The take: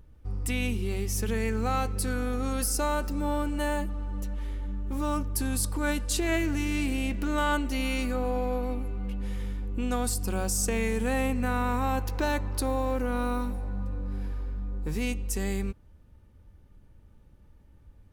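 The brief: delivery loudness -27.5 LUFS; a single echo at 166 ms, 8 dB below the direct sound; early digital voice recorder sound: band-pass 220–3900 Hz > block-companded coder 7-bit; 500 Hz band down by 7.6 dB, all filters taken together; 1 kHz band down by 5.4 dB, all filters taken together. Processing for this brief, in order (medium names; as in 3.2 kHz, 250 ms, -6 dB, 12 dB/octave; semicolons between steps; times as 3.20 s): band-pass 220–3900 Hz; peaking EQ 500 Hz -7.5 dB; peaking EQ 1 kHz -4.5 dB; delay 166 ms -8 dB; block-companded coder 7-bit; trim +7.5 dB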